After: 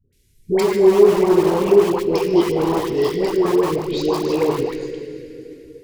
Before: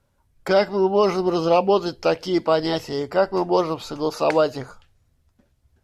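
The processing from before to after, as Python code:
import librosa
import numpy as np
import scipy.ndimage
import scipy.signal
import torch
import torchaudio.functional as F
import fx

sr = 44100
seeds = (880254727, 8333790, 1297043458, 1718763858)

p1 = fx.high_shelf(x, sr, hz=2300.0, db=11.0)
p2 = fx.env_lowpass_down(p1, sr, base_hz=1200.0, full_db=-17.5)
p3 = scipy.signal.sosfilt(scipy.signal.ellip(3, 1.0, 40, [380.0, 2000.0], 'bandstop', fs=sr, output='sos'), p2)
p4 = fx.rev_plate(p3, sr, seeds[0], rt60_s=3.7, hf_ratio=0.75, predelay_ms=0, drr_db=4.0)
p5 = (np.mod(10.0 ** (21.5 / 20.0) * p4 + 1.0, 2.0) - 1.0) / 10.0 ** (21.5 / 20.0)
p6 = p4 + (p5 * librosa.db_to_amplitude(-8.0))
p7 = fx.band_shelf(p6, sr, hz=690.0, db=12.0, octaves=1.7)
p8 = fx.dispersion(p7, sr, late='highs', ms=128.0, hz=690.0)
p9 = p8 + fx.echo_feedback(p8, sr, ms=152, feedback_pct=41, wet_db=-16.5, dry=0)
y = p9 * librosa.db_to_amplitude(1.5)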